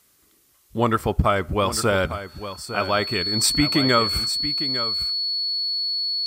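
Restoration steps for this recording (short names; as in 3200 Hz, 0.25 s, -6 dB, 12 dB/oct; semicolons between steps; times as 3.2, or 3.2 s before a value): notch 4400 Hz, Q 30; expander -52 dBFS, range -21 dB; inverse comb 0.854 s -11.5 dB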